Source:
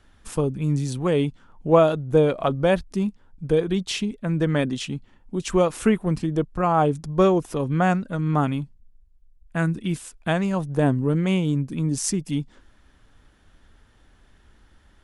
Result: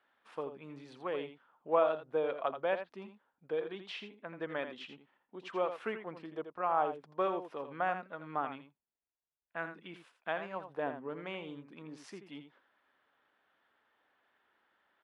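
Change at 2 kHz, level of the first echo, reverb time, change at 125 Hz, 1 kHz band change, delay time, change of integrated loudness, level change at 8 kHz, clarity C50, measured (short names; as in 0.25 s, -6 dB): -10.0 dB, -9.5 dB, none, -31.0 dB, -9.5 dB, 83 ms, -14.0 dB, under -30 dB, none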